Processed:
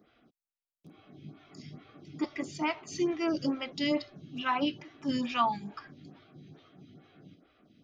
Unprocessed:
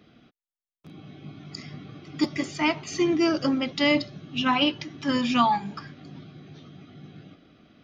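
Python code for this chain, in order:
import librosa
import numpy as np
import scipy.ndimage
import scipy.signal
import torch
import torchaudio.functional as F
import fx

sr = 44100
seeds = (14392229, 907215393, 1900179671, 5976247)

y = fx.stagger_phaser(x, sr, hz=2.3)
y = y * 10.0 ** (-4.5 / 20.0)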